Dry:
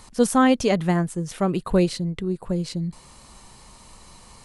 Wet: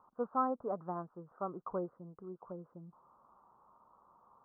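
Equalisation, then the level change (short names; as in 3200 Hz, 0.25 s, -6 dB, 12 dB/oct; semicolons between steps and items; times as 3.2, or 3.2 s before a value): steep low-pass 1300 Hz 72 dB/oct; differentiator; +7.0 dB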